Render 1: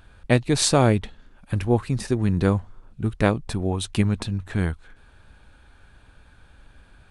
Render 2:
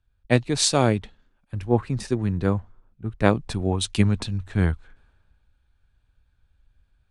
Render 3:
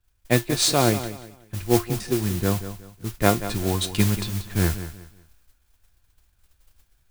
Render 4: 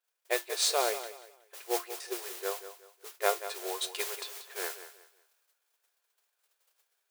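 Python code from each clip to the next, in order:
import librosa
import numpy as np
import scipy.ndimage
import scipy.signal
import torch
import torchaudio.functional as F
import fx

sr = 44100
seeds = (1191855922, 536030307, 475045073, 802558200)

y1 = scipy.signal.sosfilt(scipy.signal.butter(2, 8700.0, 'lowpass', fs=sr, output='sos'), x)
y1 = fx.rider(y1, sr, range_db=3, speed_s=0.5)
y1 = fx.band_widen(y1, sr, depth_pct=70)
y1 = y1 * librosa.db_to_amplitude(-1.5)
y2 = fx.comb_fb(y1, sr, f0_hz=350.0, decay_s=0.18, harmonics='all', damping=0.0, mix_pct=70)
y2 = fx.mod_noise(y2, sr, seeds[0], snr_db=11)
y2 = fx.echo_feedback(y2, sr, ms=184, feedback_pct=29, wet_db=-12.5)
y2 = y2 * librosa.db_to_amplitude(8.0)
y3 = fx.brickwall_highpass(y2, sr, low_hz=370.0)
y3 = y3 * librosa.db_to_amplitude(-7.0)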